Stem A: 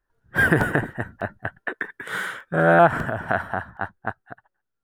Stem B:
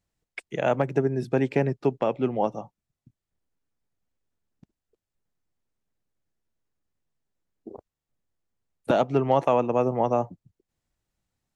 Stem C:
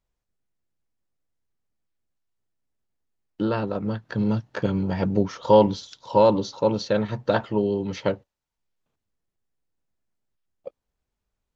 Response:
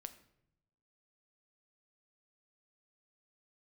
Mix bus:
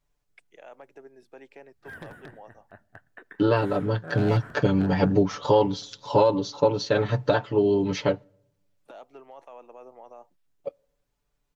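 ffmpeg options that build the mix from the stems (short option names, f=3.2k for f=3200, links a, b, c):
-filter_complex "[0:a]aeval=exprs='0.316*(abs(mod(val(0)/0.316+3,4)-2)-1)':c=same,adelay=1500,volume=-20dB,asplit=2[a][b];[b]volume=-9dB[c];[1:a]highpass=490,alimiter=limit=-18.5dB:level=0:latency=1:release=22,volume=-17.5dB,asplit=2[d][e];[2:a]aecho=1:1:6.9:0.96,volume=1dB,asplit=2[f][g];[g]volume=-15dB[h];[e]apad=whole_len=279276[i];[a][i]sidechaincompress=threshold=-48dB:ratio=8:attack=11:release=848[j];[3:a]atrim=start_sample=2205[k];[c][h]amix=inputs=2:normalize=0[l];[l][k]afir=irnorm=-1:irlink=0[m];[j][d][f][m]amix=inputs=4:normalize=0,alimiter=limit=-9.5dB:level=0:latency=1:release=485"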